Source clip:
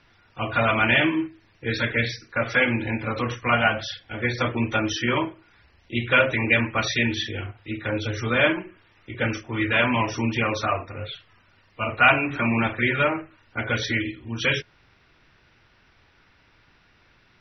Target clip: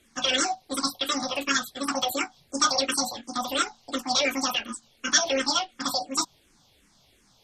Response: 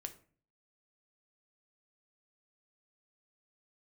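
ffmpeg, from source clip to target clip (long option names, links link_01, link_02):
-filter_complex "[0:a]asetrate=103194,aresample=44100,asplit=2[link_01][link_02];[link_02]afreqshift=-2.8[link_03];[link_01][link_03]amix=inputs=2:normalize=1"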